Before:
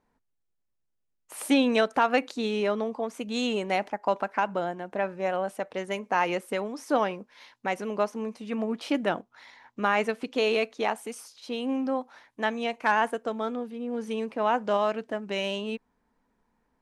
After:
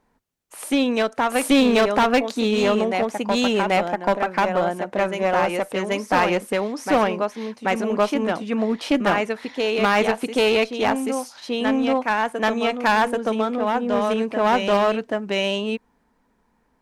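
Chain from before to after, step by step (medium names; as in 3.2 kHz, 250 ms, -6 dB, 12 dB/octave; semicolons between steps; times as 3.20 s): reverse echo 784 ms -5 dB; one-sided clip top -26 dBFS, bottom -15 dBFS; trim +7.5 dB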